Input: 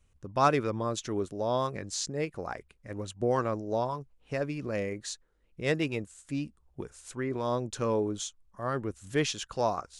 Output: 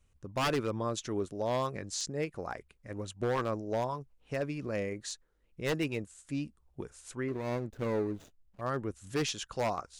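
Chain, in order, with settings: 7.28–8.61 s: median filter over 41 samples; wavefolder -21.5 dBFS; trim -2 dB

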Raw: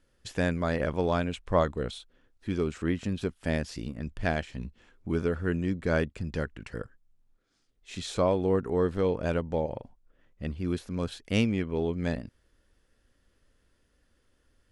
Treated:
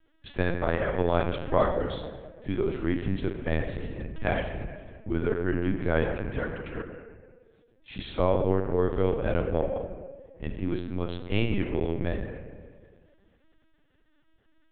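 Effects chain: on a send at -3 dB: reverberation RT60 1.7 s, pre-delay 3 ms; on the sum: LPC vocoder at 8 kHz pitch kept

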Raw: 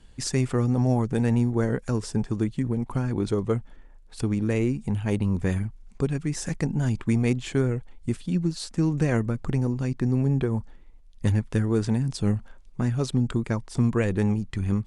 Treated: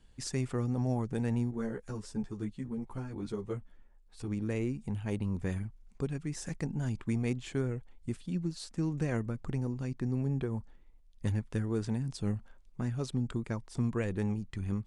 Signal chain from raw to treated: 1.51–4.28 s: three-phase chorus; trim -9 dB

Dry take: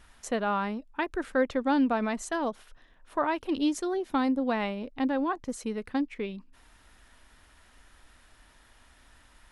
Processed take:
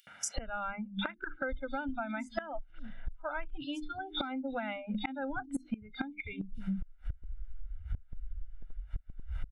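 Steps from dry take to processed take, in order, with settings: in parallel at -1 dB: upward compressor, threshold -29 dBFS; on the sum: RIAA curve playback; hum notches 50/100/150/200/250/300/350/400 Hz; comb 1.4 ms, depth 97%; three bands offset in time highs, mids, lows 70/380 ms, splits 190/3700 Hz; spectral noise reduction 26 dB; high-order bell 2.2 kHz +9 dB; inverted gate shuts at -22 dBFS, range -25 dB; compression 10:1, threshold -44 dBFS, peak gain reduction 18 dB; trim +12 dB

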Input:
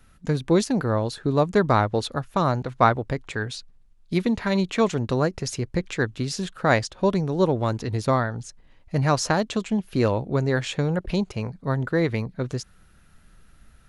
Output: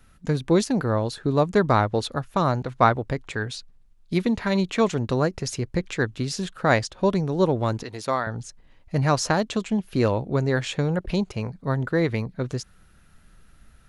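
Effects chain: 7.83–8.27 s: high-pass 580 Hz 6 dB/octave

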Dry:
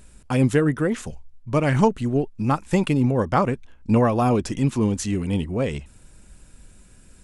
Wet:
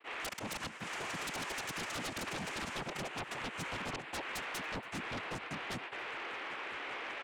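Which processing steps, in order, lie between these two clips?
two resonant band-passes 980 Hz, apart 0.78 oct; inverted gate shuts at -22 dBFS, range -24 dB; granulator 100 ms, grains 5.1 per s, spray 137 ms; frequency shift -170 Hz; whistle 1 kHz -63 dBFS; ever faster or slower copies 97 ms, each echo +6 st, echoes 3; compression 20:1, threshold -49 dBFS, peak gain reduction 17.5 dB; gate with hold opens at -59 dBFS; noise-vocoded speech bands 4; sine folder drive 19 dB, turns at -36.5 dBFS; on a send: delay 281 ms -23.5 dB; on the sum: attacks held to a fixed rise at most 400 dB/s; trim +1 dB

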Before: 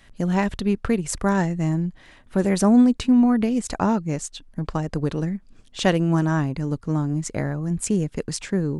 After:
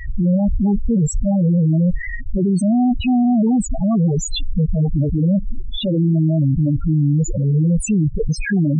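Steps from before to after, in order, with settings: compressor with a negative ratio -21 dBFS, ratio -0.5; fuzz box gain 47 dB, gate -55 dBFS; loudest bins only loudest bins 4

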